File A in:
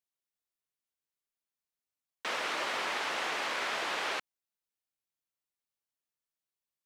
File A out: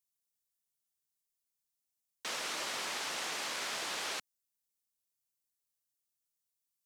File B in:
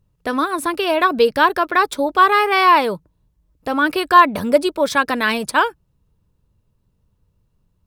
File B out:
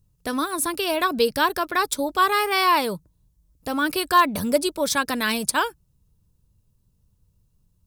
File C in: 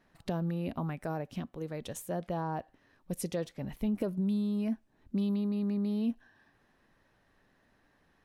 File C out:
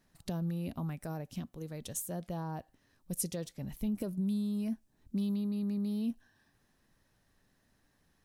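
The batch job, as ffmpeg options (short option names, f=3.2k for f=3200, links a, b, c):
-af "bass=f=250:g=7,treble=f=4k:g=14,volume=-7dB"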